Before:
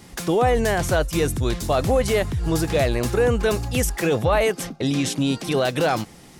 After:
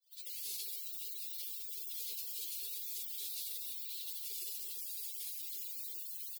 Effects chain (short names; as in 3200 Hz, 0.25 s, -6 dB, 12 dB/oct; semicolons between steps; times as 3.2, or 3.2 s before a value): spectral gate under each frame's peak -25 dB weak; HPF 79 Hz 24 dB/oct; in parallel at -9.5 dB: fuzz box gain 58 dB, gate -54 dBFS; on the sum: tilt -1.5 dB/oct; on a send: echo 1.009 s -23.5 dB; on the sum: Schroeder reverb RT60 3.8 s, combs from 30 ms, DRR -4 dB; spectral gate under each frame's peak -25 dB weak; frequency shift +340 Hz; overloaded stage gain 29.5 dB; EQ curve 120 Hz 0 dB, 190 Hz -8 dB, 430 Hz +9 dB, 1200 Hz -20 dB, 2400 Hz +2 dB, 4000 Hz +14 dB, 5700 Hz +3 dB; limiter -32 dBFS, peak gain reduction 10.5 dB; gain -1.5 dB